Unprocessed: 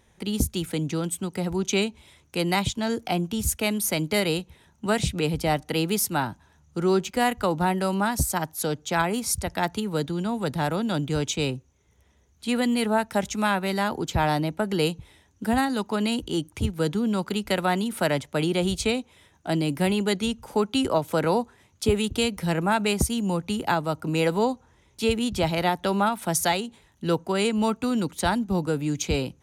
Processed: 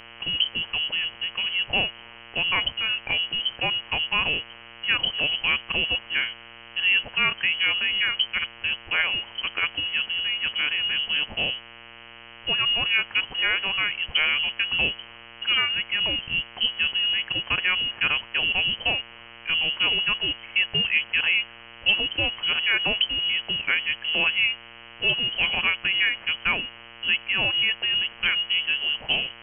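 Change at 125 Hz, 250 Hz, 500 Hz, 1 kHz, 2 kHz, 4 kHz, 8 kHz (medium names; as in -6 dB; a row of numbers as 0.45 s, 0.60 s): -14.0 dB, -18.0 dB, -14.0 dB, -8.5 dB, +9.5 dB, +12.0 dB, under -40 dB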